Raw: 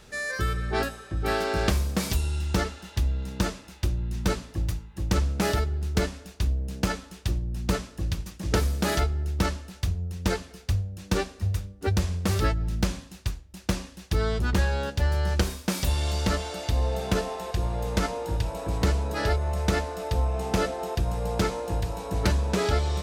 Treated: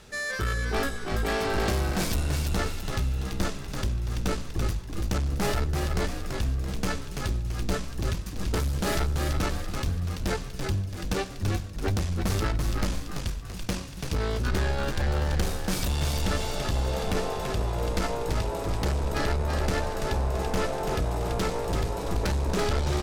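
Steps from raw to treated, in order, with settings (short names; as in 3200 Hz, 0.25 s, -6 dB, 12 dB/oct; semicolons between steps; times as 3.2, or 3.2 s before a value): 0.56–1.47 comb 4.2 ms, depth 63%; tube stage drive 26 dB, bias 0.55; frequency-shifting echo 0.335 s, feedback 45%, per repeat -52 Hz, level -4.5 dB; gain +3 dB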